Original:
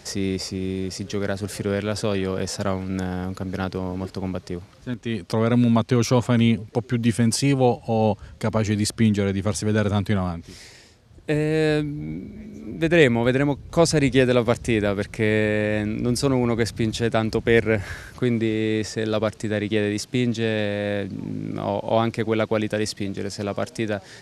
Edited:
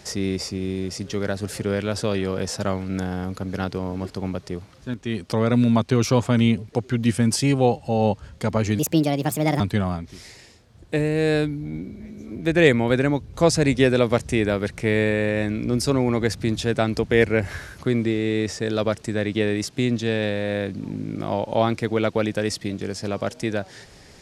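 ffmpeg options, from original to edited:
ffmpeg -i in.wav -filter_complex "[0:a]asplit=3[link_01][link_02][link_03];[link_01]atrim=end=8.794[link_04];[link_02]atrim=start=8.79:end=9.96,asetpts=PTS-STARTPTS,asetrate=63504,aresample=44100,atrim=end_sample=35831,asetpts=PTS-STARTPTS[link_05];[link_03]atrim=start=9.956[link_06];[link_04][link_05]acrossfade=duration=0.004:curve1=hsin:curve2=hsin[link_07];[link_07][link_06]acrossfade=duration=0.004:curve1=hsin:curve2=hsin" out.wav

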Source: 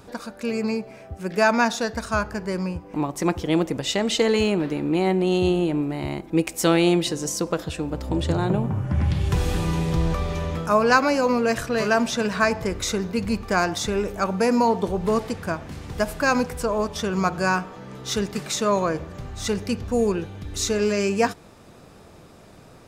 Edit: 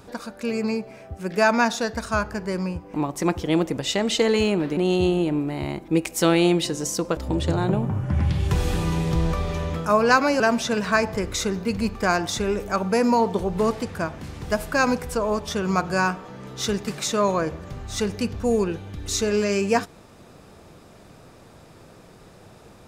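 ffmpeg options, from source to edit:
ffmpeg -i in.wav -filter_complex "[0:a]asplit=4[link_01][link_02][link_03][link_04];[link_01]atrim=end=4.772[link_05];[link_02]atrim=start=5.188:end=7.592[link_06];[link_03]atrim=start=7.978:end=11.212[link_07];[link_04]atrim=start=11.878[link_08];[link_05][link_06]acrossfade=duration=0.004:curve1=hsin:curve2=hsin[link_09];[link_09][link_07]acrossfade=duration=0.004:curve1=hsin:curve2=hsin[link_10];[link_10][link_08]acrossfade=duration=0.004:curve1=hsin:curve2=hsin" out.wav

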